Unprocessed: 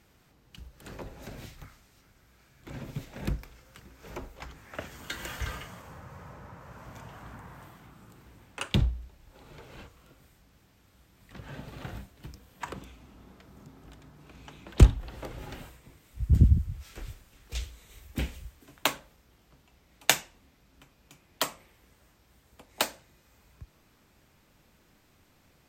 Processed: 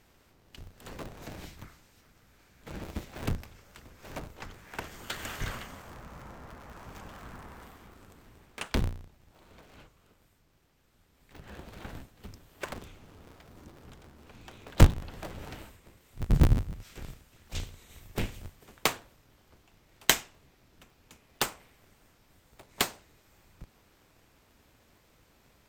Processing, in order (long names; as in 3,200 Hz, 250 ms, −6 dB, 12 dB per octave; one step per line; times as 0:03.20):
sub-harmonics by changed cycles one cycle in 2, inverted
speech leveller within 4 dB 2 s
level −4 dB